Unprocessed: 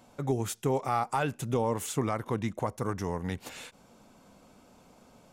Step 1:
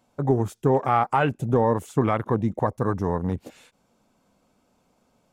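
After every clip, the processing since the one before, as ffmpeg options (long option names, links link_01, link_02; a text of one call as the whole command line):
ffmpeg -i in.wav -af "afwtdn=0.0112,volume=8dB" out.wav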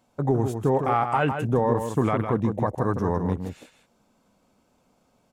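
ffmpeg -i in.wav -filter_complex "[0:a]alimiter=limit=-12dB:level=0:latency=1:release=20,asplit=2[link_01][link_02];[link_02]adelay=157.4,volume=-7dB,highshelf=frequency=4000:gain=-3.54[link_03];[link_01][link_03]amix=inputs=2:normalize=0" out.wav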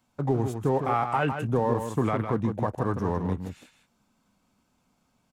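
ffmpeg -i in.wav -filter_complex "[0:a]acrossover=split=360|720|5000[link_01][link_02][link_03][link_04];[link_02]aeval=exprs='sgn(val(0))*max(abs(val(0))-0.00531,0)':channel_layout=same[link_05];[link_03]asplit=2[link_06][link_07];[link_07]adelay=20,volume=-13dB[link_08];[link_06][link_08]amix=inputs=2:normalize=0[link_09];[link_01][link_05][link_09][link_04]amix=inputs=4:normalize=0,volume=-2.5dB" out.wav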